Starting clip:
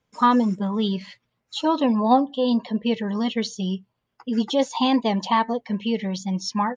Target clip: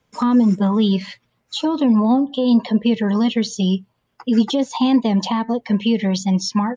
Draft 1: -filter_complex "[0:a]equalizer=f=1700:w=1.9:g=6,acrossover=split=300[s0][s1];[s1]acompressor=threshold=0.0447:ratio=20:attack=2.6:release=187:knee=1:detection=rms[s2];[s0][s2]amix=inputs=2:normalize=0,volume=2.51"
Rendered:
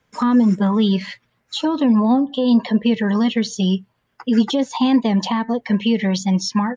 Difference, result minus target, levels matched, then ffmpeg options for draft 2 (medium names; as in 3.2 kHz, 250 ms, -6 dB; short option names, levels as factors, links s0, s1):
2 kHz band +3.5 dB
-filter_complex "[0:a]acrossover=split=300[s0][s1];[s1]acompressor=threshold=0.0447:ratio=20:attack=2.6:release=187:knee=1:detection=rms[s2];[s0][s2]amix=inputs=2:normalize=0,volume=2.51"